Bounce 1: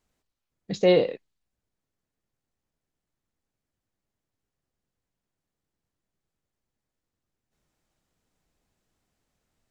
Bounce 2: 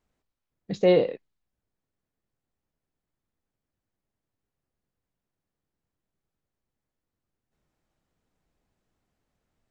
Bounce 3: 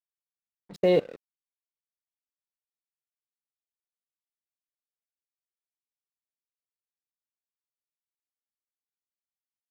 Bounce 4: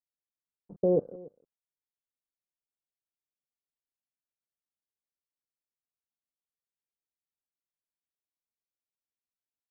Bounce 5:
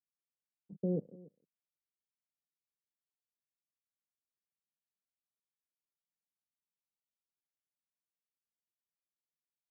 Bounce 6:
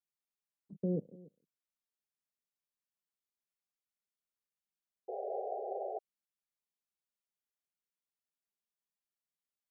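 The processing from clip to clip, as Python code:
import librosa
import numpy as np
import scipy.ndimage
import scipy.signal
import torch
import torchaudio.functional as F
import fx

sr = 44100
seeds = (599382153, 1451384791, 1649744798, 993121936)

y1 = fx.high_shelf(x, sr, hz=3300.0, db=-8.5)
y2 = fx.level_steps(y1, sr, step_db=21)
y2 = np.sign(y2) * np.maximum(np.abs(y2) - 10.0 ** (-48.0 / 20.0), 0.0)
y2 = F.gain(torch.from_numpy(y2), 2.0).numpy()
y3 = scipy.ndimage.gaussian_filter1d(y2, 11.0, mode='constant')
y3 = y3 + 10.0 ** (-21.5 / 20.0) * np.pad(y3, (int(287 * sr / 1000.0), 0))[:len(y3)]
y3 = F.gain(torch.from_numpy(y3), -1.0).numpy()
y4 = fx.bandpass_q(y3, sr, hz=180.0, q=1.8)
y4 = F.gain(torch.from_numpy(y4), -1.0).numpy()
y5 = fx.env_flanger(y4, sr, rest_ms=5.0, full_db=-49.0)
y5 = fx.spec_paint(y5, sr, seeds[0], shape='noise', start_s=5.08, length_s=0.91, low_hz=370.0, high_hz=810.0, level_db=-39.0)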